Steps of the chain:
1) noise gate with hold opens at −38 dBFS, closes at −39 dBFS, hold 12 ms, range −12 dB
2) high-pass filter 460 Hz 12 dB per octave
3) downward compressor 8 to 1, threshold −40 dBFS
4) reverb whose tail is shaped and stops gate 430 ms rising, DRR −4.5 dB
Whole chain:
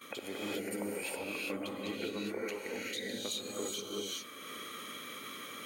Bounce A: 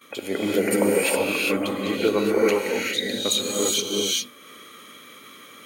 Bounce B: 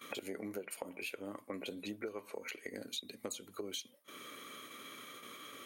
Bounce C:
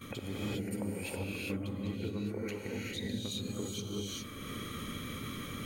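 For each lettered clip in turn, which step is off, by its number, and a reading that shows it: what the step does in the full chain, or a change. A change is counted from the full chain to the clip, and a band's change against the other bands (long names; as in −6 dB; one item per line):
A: 3, average gain reduction 10.0 dB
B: 4, change in integrated loudness −6.0 LU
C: 2, 125 Hz band +16.0 dB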